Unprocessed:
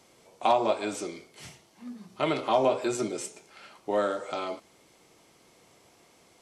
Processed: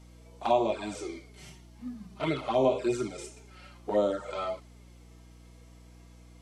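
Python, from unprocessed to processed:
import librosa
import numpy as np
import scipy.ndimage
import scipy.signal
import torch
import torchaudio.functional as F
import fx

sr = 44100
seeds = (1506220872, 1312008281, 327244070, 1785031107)

y = fx.hpss(x, sr, part='percussive', gain_db=-13)
y = fx.env_flanger(y, sr, rest_ms=6.5, full_db=-24.5)
y = fx.add_hum(y, sr, base_hz=60, snr_db=20)
y = F.gain(torch.from_numpy(y), 4.0).numpy()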